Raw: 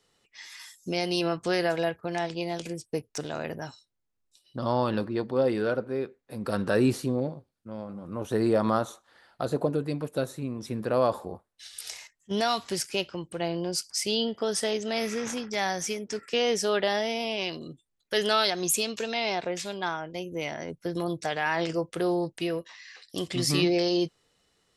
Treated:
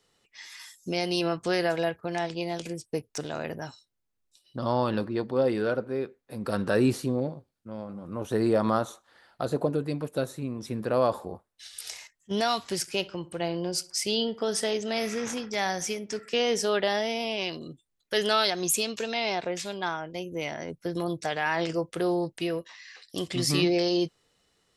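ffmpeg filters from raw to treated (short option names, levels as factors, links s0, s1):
-filter_complex "[0:a]asettb=1/sr,asplit=3[s0][s1][s2];[s0]atrim=end=12.754[s3];[s1]atrim=start=12.75:end=16.67,asetpts=PTS-STARTPTS,afade=t=in:d=0.004:c=qsin,afade=t=out:st=3.916:d=0.004:c=qsin,asplit=2[s4][s5];[s5]adelay=63,lowpass=f=2100:p=1,volume=0.126,asplit=2[s6][s7];[s7]adelay=63,lowpass=f=2100:p=1,volume=0.44,asplit=2[s8][s9];[s9]adelay=63,lowpass=f=2100:p=1,volume=0.44,asplit=2[s10][s11];[s11]adelay=63,lowpass=f=2100:p=1,volume=0.44[s12];[s4][s6][s8][s10][s12]amix=inputs=5:normalize=0,atrim=end_sample=172872[s13];[s2]atrim=start=16.666[s14];[s3][s13]acrossfade=d=0.004:c1=hsin:c2=qsin[s15];[s15][s14]acrossfade=d=0.004:c1=qsin:c2=hsin"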